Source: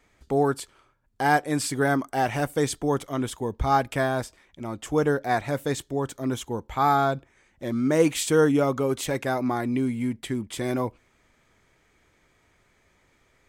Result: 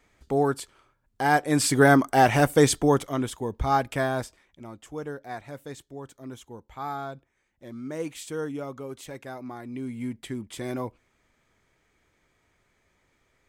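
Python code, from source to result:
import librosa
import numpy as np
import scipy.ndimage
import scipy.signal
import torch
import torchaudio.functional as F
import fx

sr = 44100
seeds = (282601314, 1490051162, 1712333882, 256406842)

y = fx.gain(x, sr, db=fx.line((1.3, -1.0), (1.73, 6.0), (2.75, 6.0), (3.31, -1.5), (4.23, -1.5), (4.93, -12.5), (9.63, -12.5), (10.04, -5.0)))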